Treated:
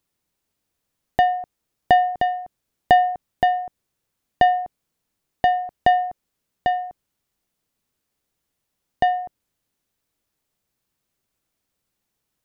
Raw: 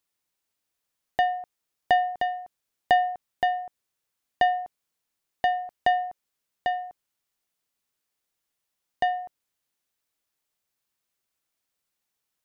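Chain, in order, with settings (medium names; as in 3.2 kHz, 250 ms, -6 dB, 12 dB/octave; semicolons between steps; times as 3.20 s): bass shelf 470 Hz +11.5 dB; trim +2.5 dB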